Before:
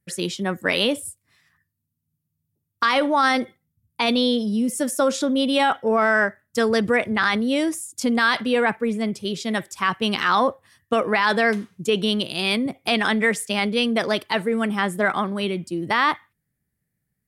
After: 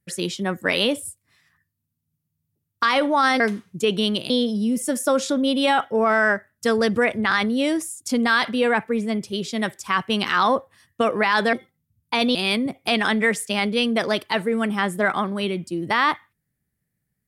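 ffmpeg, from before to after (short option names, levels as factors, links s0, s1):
-filter_complex "[0:a]asplit=5[s0][s1][s2][s3][s4];[s0]atrim=end=3.402[s5];[s1]atrim=start=11.448:end=12.352[s6];[s2]atrim=start=4.218:end=11.452[s7];[s3]atrim=start=3.398:end=4.222[s8];[s4]atrim=start=12.348[s9];[s5][s6]acrossfade=d=0.004:c1=hsin:c2=hsin[s10];[s10][s7]acrossfade=d=0.004:c1=hsin:c2=hsin[s11];[s11][s8]acrossfade=d=0.004:c1=hsin:c2=hsin[s12];[s12][s9]acrossfade=d=0.004:c1=hsin:c2=hsin"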